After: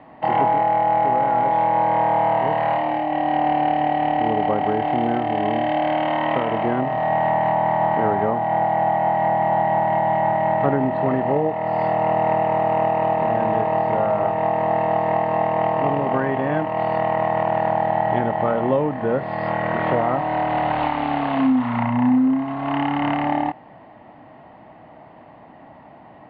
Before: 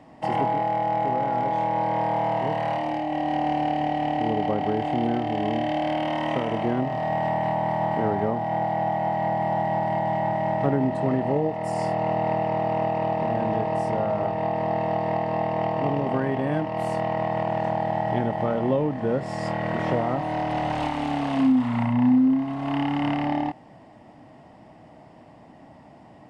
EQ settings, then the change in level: steep low-pass 4.6 kHz 96 dB/octave; distance through air 170 m; peaking EQ 1.3 kHz +8.5 dB 2.8 oct; 0.0 dB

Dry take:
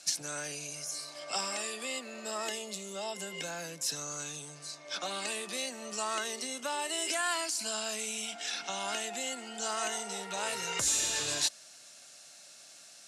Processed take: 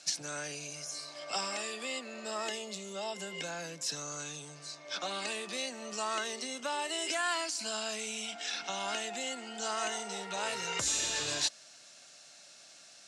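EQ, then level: low-pass 7 kHz 12 dB/octave; 0.0 dB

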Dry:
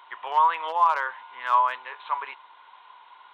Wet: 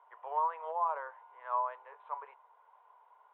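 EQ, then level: ladder band-pass 710 Hz, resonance 50%; distance through air 140 m; peaking EQ 450 Hz +10.5 dB 0.24 oct; 0.0 dB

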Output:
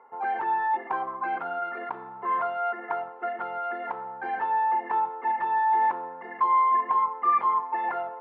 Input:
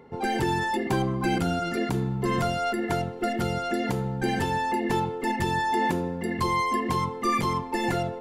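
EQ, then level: resonant high-pass 1 kHz, resonance Q 2; low-pass 1.4 kHz 12 dB/octave; distance through air 400 m; +2.5 dB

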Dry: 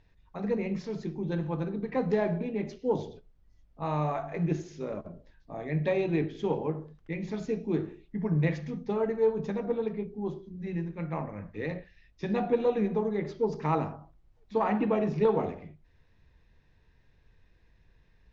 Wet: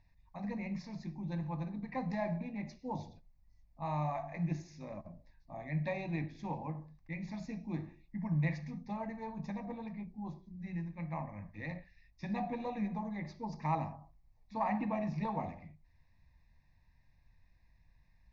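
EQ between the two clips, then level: static phaser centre 2.1 kHz, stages 8; -3.5 dB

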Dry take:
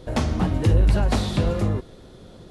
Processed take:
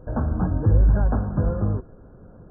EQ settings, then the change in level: brick-wall FIR low-pass 1.7 kHz; bass shelf 170 Hz +5 dB; band-stop 360 Hz, Q 12; -3.5 dB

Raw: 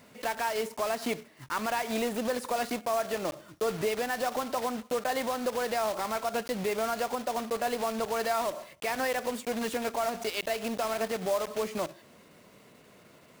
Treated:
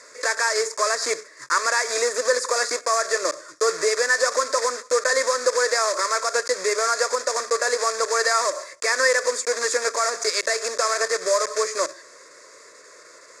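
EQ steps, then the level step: cabinet simulation 370–8300 Hz, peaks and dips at 530 Hz +4 dB, 1.1 kHz +5 dB, 1.8 kHz +7 dB, 2.7 kHz +5 dB, 4.9 kHz +8 dB, 6.9 kHz +9 dB; treble shelf 2.8 kHz +8 dB; static phaser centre 790 Hz, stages 6; +8.0 dB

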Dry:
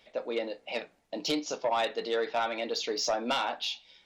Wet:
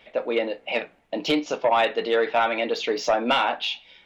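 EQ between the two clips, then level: resonant high shelf 3.7 kHz -8.5 dB, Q 1.5; +8.0 dB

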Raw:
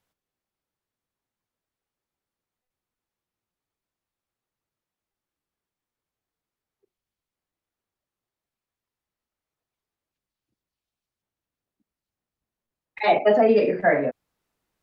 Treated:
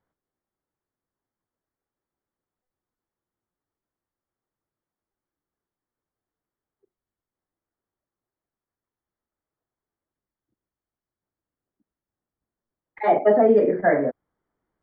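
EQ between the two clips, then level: Savitzky-Golay filter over 41 samples; peaking EQ 330 Hz +3.5 dB; 0.0 dB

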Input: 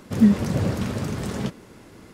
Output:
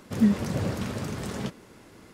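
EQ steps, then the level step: bass shelf 390 Hz -3.5 dB; -2.5 dB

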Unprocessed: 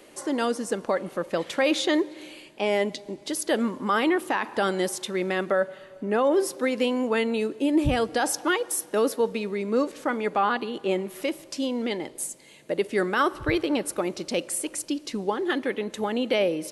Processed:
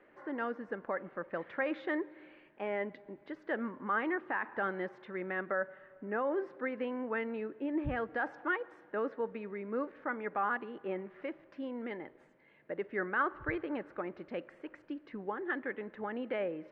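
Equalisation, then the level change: four-pole ladder low-pass 2 kHz, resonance 50%; -3.0 dB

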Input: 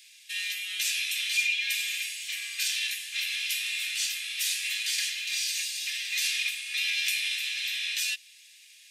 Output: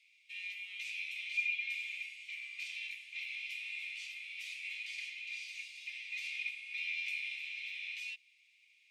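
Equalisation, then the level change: vowel filter u; +5.0 dB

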